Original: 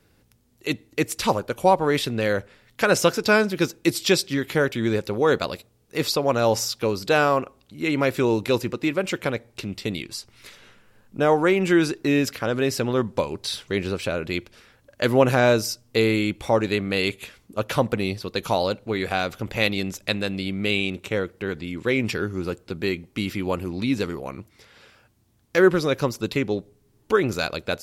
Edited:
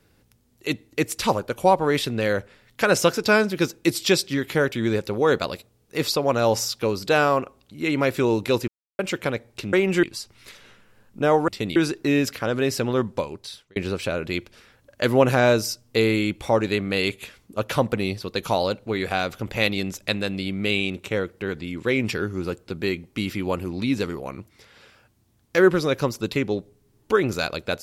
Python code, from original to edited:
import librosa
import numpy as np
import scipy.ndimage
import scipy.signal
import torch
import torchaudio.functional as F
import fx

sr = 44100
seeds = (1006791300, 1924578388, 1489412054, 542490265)

y = fx.edit(x, sr, fx.silence(start_s=8.68, length_s=0.31),
    fx.swap(start_s=9.73, length_s=0.28, other_s=11.46, other_length_s=0.3),
    fx.fade_out_span(start_s=13.01, length_s=0.75), tone=tone)